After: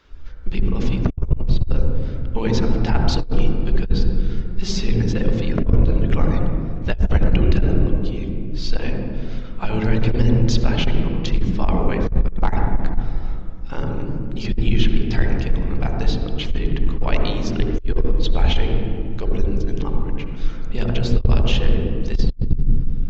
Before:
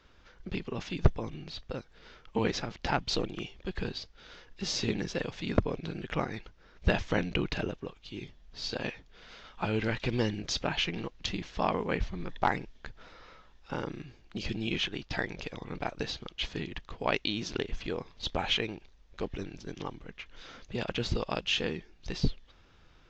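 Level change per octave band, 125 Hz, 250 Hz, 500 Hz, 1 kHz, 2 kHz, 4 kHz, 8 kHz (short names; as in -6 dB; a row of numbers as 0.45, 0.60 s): +16.5 dB, +12.5 dB, +8.0 dB, +4.5 dB, +3.0 dB, +3.5 dB, n/a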